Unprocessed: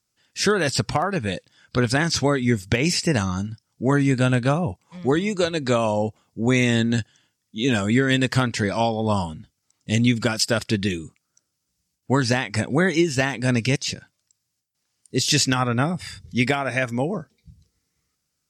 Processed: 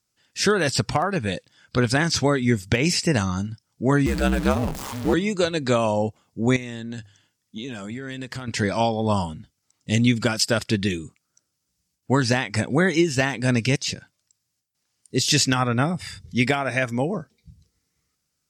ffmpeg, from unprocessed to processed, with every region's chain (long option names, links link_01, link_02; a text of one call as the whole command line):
ffmpeg -i in.wav -filter_complex "[0:a]asettb=1/sr,asplit=3[link_01][link_02][link_03];[link_01]atrim=end=4.064[link_04];[link_02]atrim=start=4.06:end=5.14,asetpts=PTS-STARTPTS,afade=type=in:duration=0.004:curve=qsin,afade=type=out:start_time=1.076:duration=0.004:curve=qsin,aeval=exprs='val(0)+0.5*0.0596*sgn(val(0))':channel_layout=same,aeval=exprs='val(0)*sin(2*PI*67*n/s)':channel_layout=same[link_05];[link_03]atrim=start=5.136[link_06];[link_04][link_05]acrossfade=duration=0.004:curve1=hsin:curve2=qsin[link_07];[link_07][link_06]acrossfade=duration=0.004:curve1=qsin:curve2=hsin,asettb=1/sr,asplit=3[link_08][link_09][link_10];[link_08]atrim=end=6.564[link_11];[link_09]atrim=start=6.56:end=8.48,asetpts=PTS-STARTPTS,afade=type=in:duration=0.004:curve=qsin,afade=type=out:start_time=1.916:duration=0.004:curve=qsin,acompressor=threshold=-28dB:ratio=16:attack=3.2:release=140:knee=1:detection=peak,bandreject=frequency=50:width_type=h:width=6,bandreject=frequency=100:width_type=h:width=6[link_12];[link_10]atrim=start=8.476[link_13];[link_11][link_12]acrossfade=duration=0.004:curve1=hsin:curve2=qsin[link_14];[link_14][link_13]acrossfade=duration=0.004:curve1=qsin:curve2=hsin" out.wav